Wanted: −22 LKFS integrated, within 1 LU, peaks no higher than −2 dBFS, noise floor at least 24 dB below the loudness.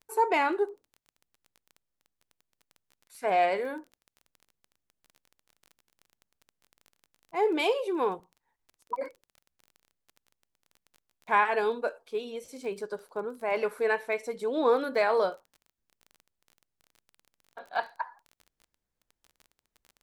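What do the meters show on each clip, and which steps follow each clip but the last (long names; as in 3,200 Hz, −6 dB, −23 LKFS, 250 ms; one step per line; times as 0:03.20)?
crackle rate 19 per second; integrated loudness −29.5 LKFS; sample peak −13.0 dBFS; target loudness −22.0 LKFS
→ click removal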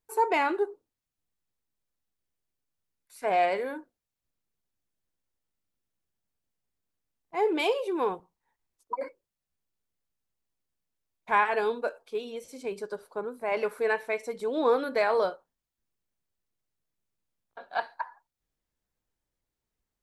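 crackle rate 0 per second; integrated loudness −29.0 LKFS; sample peak −13.0 dBFS; target loudness −22.0 LKFS
→ level +7 dB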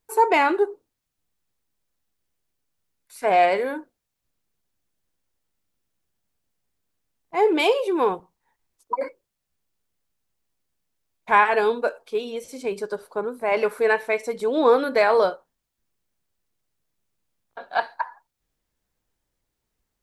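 integrated loudness −22.0 LKFS; sample peak −6.0 dBFS; background noise floor −81 dBFS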